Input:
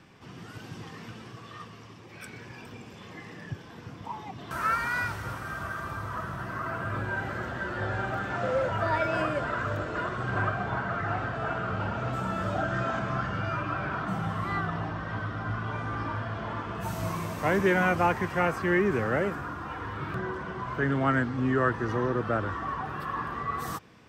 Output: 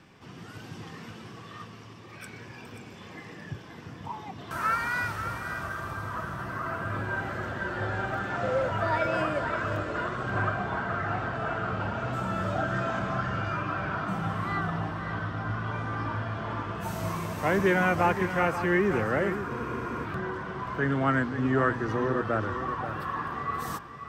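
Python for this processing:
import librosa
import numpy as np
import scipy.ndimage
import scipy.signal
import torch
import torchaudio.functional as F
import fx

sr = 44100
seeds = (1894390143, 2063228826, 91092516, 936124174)

p1 = fx.hum_notches(x, sr, base_hz=60, count=2)
p2 = p1 + fx.echo_single(p1, sr, ms=532, db=-10.0, dry=0)
y = fx.spec_freeze(p2, sr, seeds[0], at_s=19.51, hold_s=0.54)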